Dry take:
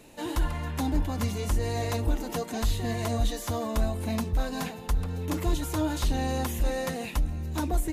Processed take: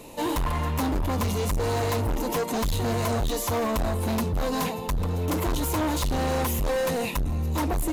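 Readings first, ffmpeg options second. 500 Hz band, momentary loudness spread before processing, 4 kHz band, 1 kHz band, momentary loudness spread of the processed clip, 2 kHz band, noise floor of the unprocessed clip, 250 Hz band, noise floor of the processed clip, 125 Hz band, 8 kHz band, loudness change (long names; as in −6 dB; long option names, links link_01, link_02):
+6.0 dB, 3 LU, +3.5 dB, +6.0 dB, 2 LU, +4.0 dB, −40 dBFS, +3.0 dB, −32 dBFS, +2.5 dB, +4.5 dB, +3.5 dB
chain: -af "equalizer=frequency=500:width_type=o:width=0.33:gain=5,equalizer=frequency=1000:width_type=o:width=0.33:gain=8,equalizer=frequency=1600:width_type=o:width=0.33:gain=-9,equalizer=frequency=12500:width_type=o:width=0.33:gain=5,asoftclip=type=hard:threshold=-30dB,volume=7dB"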